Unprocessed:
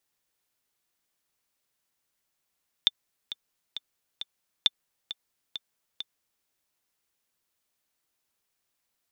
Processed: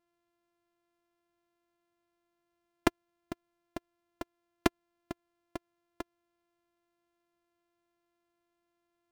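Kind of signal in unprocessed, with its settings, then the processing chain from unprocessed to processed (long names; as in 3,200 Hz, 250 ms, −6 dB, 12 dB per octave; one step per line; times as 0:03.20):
click track 134 BPM, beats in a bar 4, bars 2, 3,560 Hz, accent 14.5 dB −6.5 dBFS
samples sorted by size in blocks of 128 samples
high-shelf EQ 2,500 Hz −8.5 dB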